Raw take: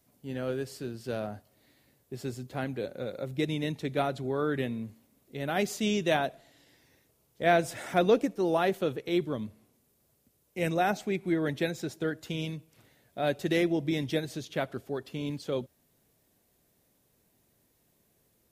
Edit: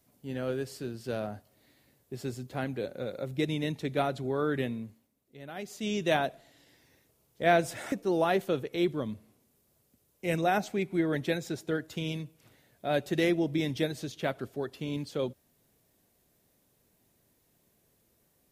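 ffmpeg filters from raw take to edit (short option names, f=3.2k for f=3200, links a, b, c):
-filter_complex "[0:a]asplit=4[a][b][c][d];[a]atrim=end=5.14,asetpts=PTS-STARTPTS,afade=t=out:st=4.67:d=0.47:silence=0.266073[e];[b]atrim=start=5.14:end=5.66,asetpts=PTS-STARTPTS,volume=-11.5dB[f];[c]atrim=start=5.66:end=7.922,asetpts=PTS-STARTPTS,afade=t=in:d=0.47:silence=0.266073[g];[d]atrim=start=8.248[h];[e][f][g]concat=n=3:v=0:a=1[i];[i][h]acrossfade=d=0.004:c1=hsin:c2=hsin"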